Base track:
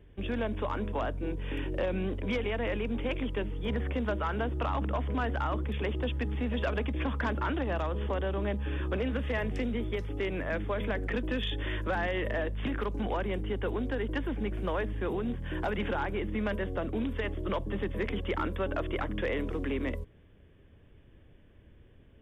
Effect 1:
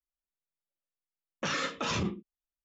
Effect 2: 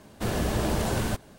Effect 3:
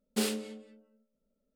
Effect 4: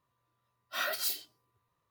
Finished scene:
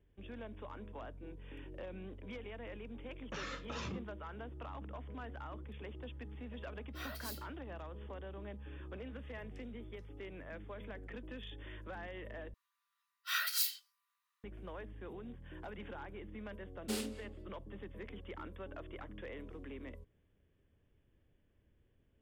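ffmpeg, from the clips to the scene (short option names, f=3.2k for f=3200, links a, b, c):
-filter_complex "[4:a]asplit=2[a][b];[0:a]volume=-15.5dB[c];[1:a]highshelf=f=7k:g=-7.5[d];[b]highpass=f=1.3k:w=0.5412,highpass=f=1.3k:w=1.3066[e];[c]asplit=2[f][g];[f]atrim=end=12.544[h];[e]atrim=end=1.9,asetpts=PTS-STARTPTS,volume=-0.5dB[i];[g]atrim=start=14.436[j];[d]atrim=end=2.64,asetpts=PTS-STARTPTS,volume=-11.5dB,afade=t=in:d=0.004:c=hsin,afade=t=out:st=2.636:d=0.004:c=hsin,adelay=1890[k];[a]atrim=end=1.9,asetpts=PTS-STARTPTS,volume=-14dB,afade=t=in:d=0.004:c=hsin,afade=t=out:st=1.896:d=0.004:c=hsin,adelay=6220[l];[3:a]atrim=end=1.55,asetpts=PTS-STARTPTS,volume=-8dB,afade=t=in:d=0.004:c=hsin,afade=t=out:st=1.546:d=0.004:c=hsin,adelay=16720[m];[h][i]acrossfade=d=0.004:c1=hsin:c2=hsin[n];[n][j]acrossfade=d=0.004:c1=hsin:c2=hsin[o];[o][k][l][m]amix=inputs=4:normalize=0"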